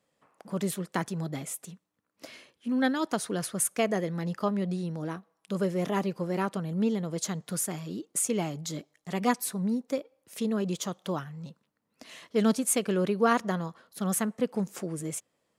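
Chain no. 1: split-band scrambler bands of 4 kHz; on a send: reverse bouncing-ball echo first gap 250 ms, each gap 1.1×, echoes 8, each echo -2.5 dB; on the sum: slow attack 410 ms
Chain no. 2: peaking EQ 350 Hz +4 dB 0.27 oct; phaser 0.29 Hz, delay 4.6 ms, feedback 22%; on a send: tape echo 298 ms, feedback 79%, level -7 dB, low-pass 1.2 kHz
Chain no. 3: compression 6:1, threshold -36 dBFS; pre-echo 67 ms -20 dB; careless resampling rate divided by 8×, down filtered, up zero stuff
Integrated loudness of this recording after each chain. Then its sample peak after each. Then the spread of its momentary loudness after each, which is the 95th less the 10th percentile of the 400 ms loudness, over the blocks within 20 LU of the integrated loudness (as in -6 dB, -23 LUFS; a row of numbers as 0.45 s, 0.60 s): -25.5 LUFS, -29.5 LUFS, -28.5 LUFS; -10.0 dBFS, -8.5 dBFS, -3.5 dBFS; 10 LU, 12 LU, 9 LU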